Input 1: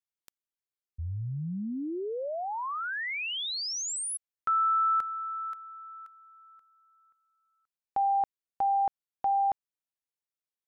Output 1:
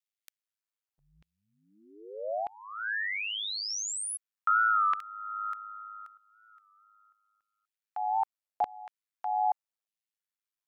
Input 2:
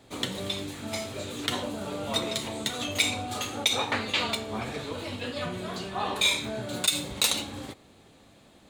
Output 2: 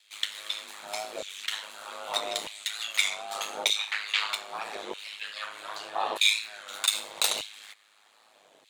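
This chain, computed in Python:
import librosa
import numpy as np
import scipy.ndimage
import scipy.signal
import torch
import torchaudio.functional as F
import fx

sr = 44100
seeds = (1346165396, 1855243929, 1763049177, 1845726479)

y = fx.filter_lfo_highpass(x, sr, shape='saw_down', hz=0.81, low_hz=510.0, high_hz=2800.0, q=1.4)
y = y * np.sin(2.0 * np.pi * 52.0 * np.arange(len(y)) / sr)
y = fx.record_warp(y, sr, rpm=33.33, depth_cents=100.0)
y = y * librosa.db_to_amplitude(1.5)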